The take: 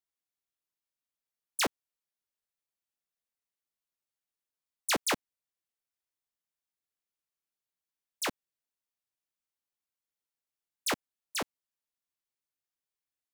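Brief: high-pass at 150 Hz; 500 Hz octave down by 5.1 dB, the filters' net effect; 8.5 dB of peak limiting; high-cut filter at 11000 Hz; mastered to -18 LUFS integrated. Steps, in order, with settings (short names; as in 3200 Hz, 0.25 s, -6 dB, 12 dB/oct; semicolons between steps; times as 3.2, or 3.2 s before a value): HPF 150 Hz; LPF 11000 Hz; bell 500 Hz -6.5 dB; gain +19.5 dB; limiter -5 dBFS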